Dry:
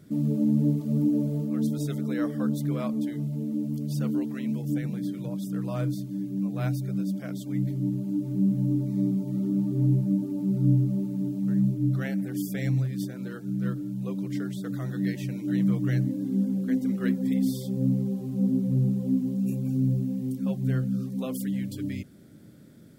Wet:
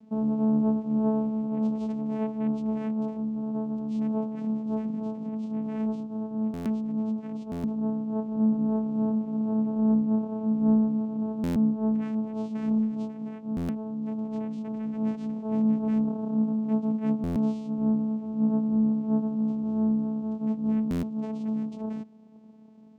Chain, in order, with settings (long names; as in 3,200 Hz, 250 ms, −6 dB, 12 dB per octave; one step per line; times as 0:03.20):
channel vocoder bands 4, saw 218 Hz
buffer that repeats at 0:06.53/0:07.51/0:11.43/0:13.56/0:17.23/0:20.90, samples 512, times 10